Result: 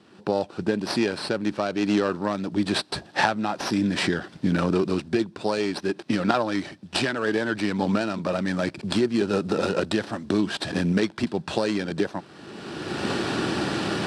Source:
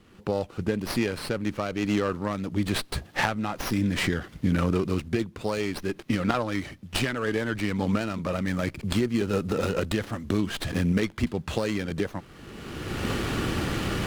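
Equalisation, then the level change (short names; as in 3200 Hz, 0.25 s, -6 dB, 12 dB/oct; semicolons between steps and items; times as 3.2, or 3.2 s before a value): speaker cabinet 220–8100 Hz, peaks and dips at 250 Hz -4 dB, 480 Hz -6 dB, 1200 Hz -6 dB, 2100 Hz -9 dB, 3000 Hz -5 dB, 6700 Hz -9 dB; +7.0 dB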